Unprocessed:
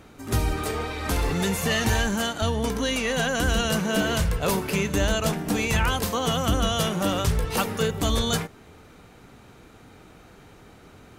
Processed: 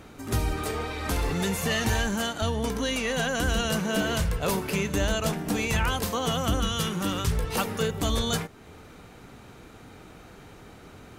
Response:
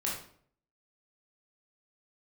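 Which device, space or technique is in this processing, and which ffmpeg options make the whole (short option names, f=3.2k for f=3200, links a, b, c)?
parallel compression: -filter_complex "[0:a]asplit=2[a][b];[b]acompressor=threshold=-40dB:ratio=6,volume=-1.5dB[c];[a][c]amix=inputs=2:normalize=0,asettb=1/sr,asplit=3[d][e][f];[d]atrim=end=6.604[g];[e]atrim=start=6.6:end=7.32,asetpts=PTS-STARTPTS,afade=t=in:d=0.004:c=qsin,afade=t=out:st=0.716:d=0.004:c=qsin,equalizer=f=650:t=o:w=0.4:g=-14[h];[f]atrim=start=7.316[i];[g][h]acrossfade=d=0.004:c1=hsin:c2=qsin[j];[j][i]acrossfade=d=0.004:c1=qsin:c2=hsin,volume=-3.5dB"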